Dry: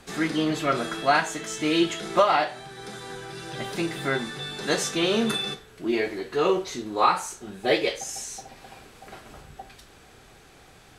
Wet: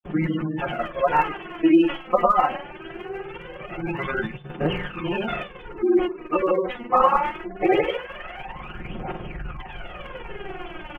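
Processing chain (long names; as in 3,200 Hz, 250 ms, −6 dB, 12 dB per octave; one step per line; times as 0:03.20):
linear delta modulator 16 kbit/s, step −22 dBFS
hum removal 138.2 Hz, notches 2
granular cloud 100 ms, grains 20 per second, pitch spread up and down by 0 semitones
noise gate −29 dBFS, range −47 dB
gate on every frequency bin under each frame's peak −20 dB strong
comb filter 5.6 ms, depth 60%
phase shifter 0.22 Hz, delay 4.2 ms, feedback 70%
parametric band 1,900 Hz −5.5 dB 0.99 octaves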